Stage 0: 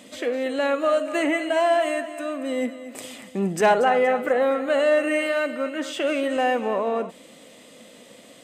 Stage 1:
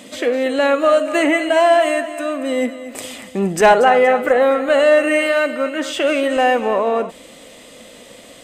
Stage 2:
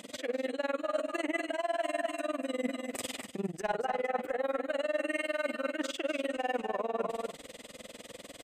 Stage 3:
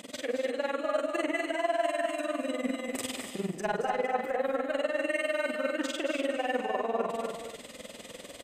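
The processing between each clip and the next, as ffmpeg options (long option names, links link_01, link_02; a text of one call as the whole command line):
ffmpeg -i in.wav -af "asubboost=boost=5.5:cutoff=70,volume=7.5dB" out.wav
ffmpeg -i in.wav -af "tremolo=f=20:d=0.98,aecho=1:1:245:0.299,areverse,acompressor=threshold=-26dB:ratio=6,areverse,volume=-4dB" out.wav
ffmpeg -i in.wav -af "aecho=1:1:44|166|220|294:0.473|0.126|0.316|0.282,volume=1.5dB" out.wav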